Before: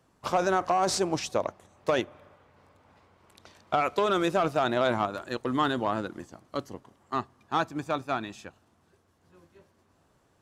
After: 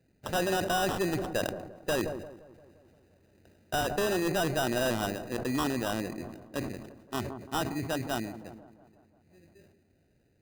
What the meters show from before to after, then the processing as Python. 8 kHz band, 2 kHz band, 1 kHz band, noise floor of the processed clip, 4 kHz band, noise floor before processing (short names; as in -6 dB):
+0.5 dB, 0.0 dB, -6.0 dB, -69 dBFS, 0.0 dB, -67 dBFS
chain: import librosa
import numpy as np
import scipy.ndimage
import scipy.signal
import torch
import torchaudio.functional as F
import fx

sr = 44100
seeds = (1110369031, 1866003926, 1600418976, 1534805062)

y = fx.wiener(x, sr, points=41)
y = fx.peak_eq(y, sr, hz=1300.0, db=-8.5, octaves=0.47)
y = fx.sample_hold(y, sr, seeds[0], rate_hz=2200.0, jitter_pct=0)
y = np.clip(10.0 ** (24.5 / 20.0) * y, -1.0, 1.0) / 10.0 ** (24.5 / 20.0)
y = fx.echo_wet_lowpass(y, sr, ms=173, feedback_pct=63, hz=960.0, wet_db=-16.0)
y = fx.sustainer(y, sr, db_per_s=57.0)